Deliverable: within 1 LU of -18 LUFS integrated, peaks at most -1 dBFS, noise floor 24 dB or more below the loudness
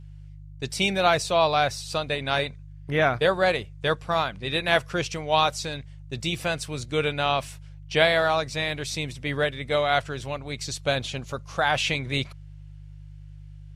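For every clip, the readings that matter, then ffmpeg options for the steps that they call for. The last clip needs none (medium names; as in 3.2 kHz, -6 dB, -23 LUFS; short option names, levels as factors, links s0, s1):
hum 50 Hz; highest harmonic 150 Hz; hum level -40 dBFS; loudness -25.0 LUFS; peak level -4.5 dBFS; loudness target -18.0 LUFS
-> -af "bandreject=f=50:t=h:w=4,bandreject=f=100:t=h:w=4,bandreject=f=150:t=h:w=4"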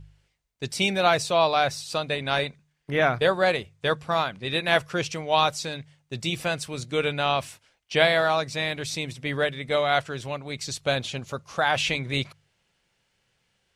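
hum not found; loudness -25.0 LUFS; peak level -4.0 dBFS; loudness target -18.0 LUFS
-> -af "volume=2.24,alimiter=limit=0.891:level=0:latency=1"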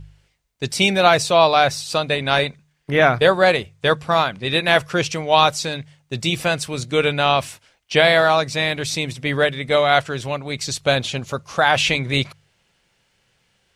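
loudness -18.5 LUFS; peak level -1.0 dBFS; noise floor -66 dBFS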